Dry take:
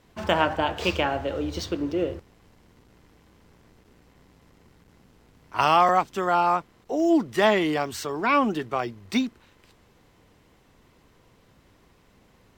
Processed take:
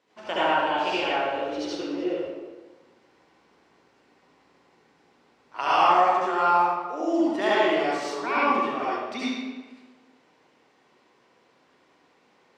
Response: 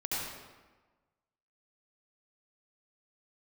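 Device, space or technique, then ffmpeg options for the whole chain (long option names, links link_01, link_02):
supermarket ceiling speaker: -filter_complex "[0:a]highpass=340,lowpass=6300[link_01];[1:a]atrim=start_sample=2205[link_02];[link_01][link_02]afir=irnorm=-1:irlink=0,volume=-5dB"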